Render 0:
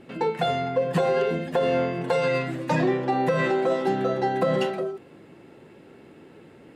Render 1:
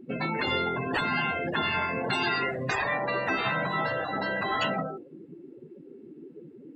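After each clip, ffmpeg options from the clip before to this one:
-af "afftdn=nr=28:nf=-37,afftfilt=real='re*lt(hypot(re,im),0.126)':imag='im*lt(hypot(re,im),0.126)':win_size=1024:overlap=0.75,volume=8dB"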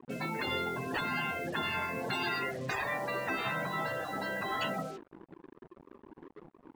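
-af "acrusher=bits=6:mix=0:aa=0.5,volume=-6dB"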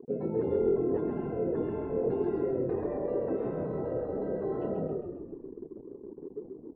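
-filter_complex "[0:a]lowpass=f=440:t=q:w=4.9,asplit=8[a][b][c][d][e][f][g][h];[b]adelay=134,afreqshift=-38,volume=-4.5dB[i];[c]adelay=268,afreqshift=-76,volume=-10.3dB[j];[d]adelay=402,afreqshift=-114,volume=-16.2dB[k];[e]adelay=536,afreqshift=-152,volume=-22dB[l];[f]adelay=670,afreqshift=-190,volume=-27.9dB[m];[g]adelay=804,afreqshift=-228,volume=-33.7dB[n];[h]adelay=938,afreqshift=-266,volume=-39.6dB[o];[a][i][j][k][l][m][n][o]amix=inputs=8:normalize=0"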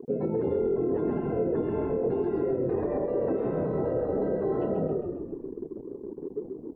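-af "alimiter=level_in=1dB:limit=-24dB:level=0:latency=1:release=118,volume=-1dB,volume=6dB"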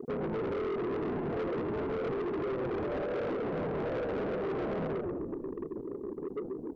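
-af "asoftclip=type=tanh:threshold=-33dB,volume=2dB"

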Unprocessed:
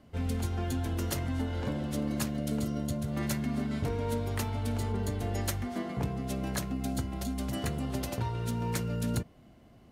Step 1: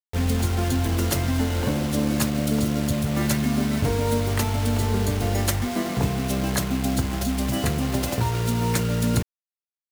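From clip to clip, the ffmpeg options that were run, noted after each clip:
-af "acrusher=bits=6:mix=0:aa=0.000001,volume=9dB"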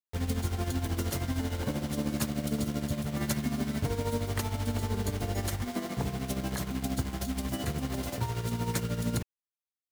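-af "bandreject=f=2.6k:w=26,tremolo=f=13:d=0.6,volume=-6dB"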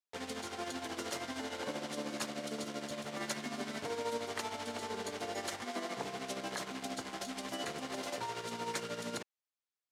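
-filter_complex "[0:a]asplit=2[a][b];[b]alimiter=level_in=1dB:limit=-24dB:level=0:latency=1:release=39,volume=-1dB,volume=-0.5dB[c];[a][c]amix=inputs=2:normalize=0,highpass=420,lowpass=7.4k,volume=-5.5dB"

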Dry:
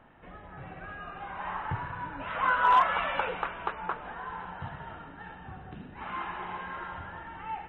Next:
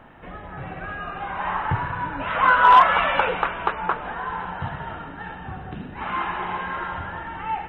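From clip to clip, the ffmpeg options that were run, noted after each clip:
-af "acontrast=68,volume=3dB"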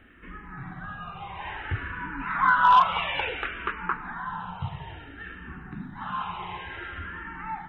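-filter_complex "[0:a]equalizer=f=590:w=1.4:g=-13,asplit=2[a][b];[b]afreqshift=-0.58[c];[a][c]amix=inputs=2:normalize=1"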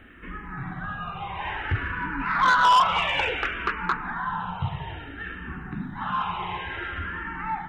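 -af "asoftclip=type=tanh:threshold=-19dB,volume=5dB"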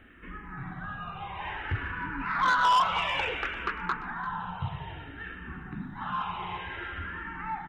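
-af "aecho=1:1:344:0.15,volume=-5dB"

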